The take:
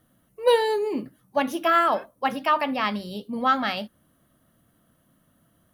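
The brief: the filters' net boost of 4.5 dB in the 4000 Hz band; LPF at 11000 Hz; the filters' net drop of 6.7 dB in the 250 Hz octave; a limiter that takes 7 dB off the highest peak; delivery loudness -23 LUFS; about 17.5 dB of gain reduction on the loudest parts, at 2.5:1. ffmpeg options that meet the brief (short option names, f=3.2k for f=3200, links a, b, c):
-af "lowpass=11k,equalizer=f=250:t=o:g=-8,equalizer=f=4k:t=o:g=6,acompressor=threshold=-43dB:ratio=2.5,volume=19dB,alimiter=limit=-12.5dB:level=0:latency=1"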